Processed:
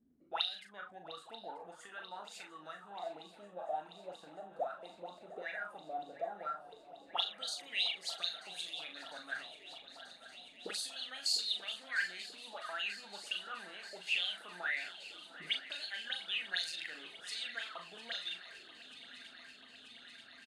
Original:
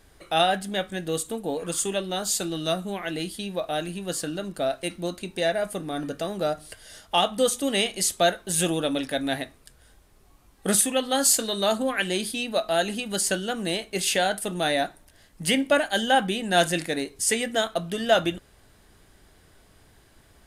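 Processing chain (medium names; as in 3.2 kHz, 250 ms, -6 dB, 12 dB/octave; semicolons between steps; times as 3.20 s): peaking EQ 950 Hz -5 dB 2.8 oct; transient shaper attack -2 dB, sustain +7 dB; auto-wah 230–4300 Hz, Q 13, up, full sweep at -21 dBFS; doubling 39 ms -6.5 dB; on a send: shuffle delay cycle 936 ms, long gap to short 3:1, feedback 78%, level -17 dB; on the sum: trim +3.5 dB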